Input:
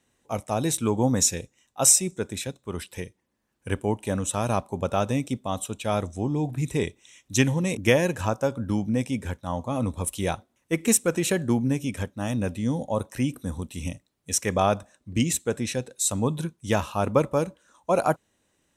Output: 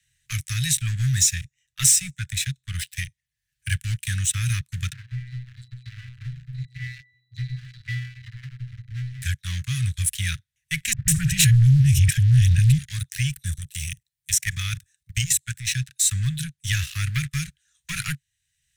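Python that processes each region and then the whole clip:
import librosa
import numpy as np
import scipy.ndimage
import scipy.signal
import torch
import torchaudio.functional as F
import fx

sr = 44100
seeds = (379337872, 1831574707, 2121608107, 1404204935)

y = fx.chain(x, sr, fx.reverse_delay(ms=130, wet_db=-10.0),
    fx.octave_resonator(note='B', decay_s=0.6),
    fx.band_squash(depth_pct=70), at=(4.93, 9.22))
y = fx.chain(y, sr, fx.low_shelf_res(hz=210.0, db=13.0, q=1.5),
    fx.transient(attack_db=3, sustain_db=12),
    fx.dispersion(late='highs', ms=149.0, hz=540.0), at=(10.93, 12.78))
y = fx.chain(y, sr, fx.high_shelf(hz=7000.0, db=10.5),
    fx.level_steps(step_db=12), at=(13.52, 15.67))
y = fx.leveller(y, sr, passes=3)
y = scipy.signal.sosfilt(scipy.signal.cheby1(4, 1.0, [140.0, 1700.0], 'bandstop', fs=sr, output='sos'), y)
y = fx.band_squash(y, sr, depth_pct=40)
y = y * 10.0 ** (-3.0 / 20.0)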